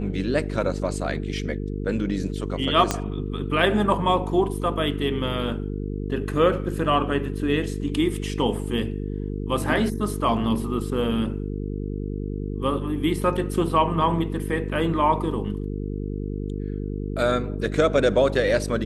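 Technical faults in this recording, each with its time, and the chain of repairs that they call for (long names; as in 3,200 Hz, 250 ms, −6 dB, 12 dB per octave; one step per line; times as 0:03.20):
mains buzz 50 Hz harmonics 9 −29 dBFS
0:02.91: click −7 dBFS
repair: click removal
hum removal 50 Hz, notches 9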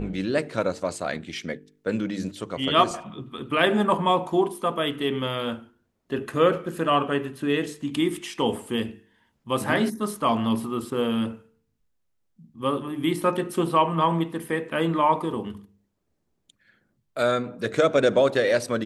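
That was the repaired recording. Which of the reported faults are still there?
0:02.91: click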